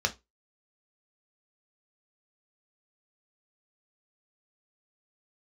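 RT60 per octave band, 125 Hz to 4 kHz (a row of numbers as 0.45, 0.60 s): 0.25, 0.20, 0.20, 0.20, 0.20, 0.20 s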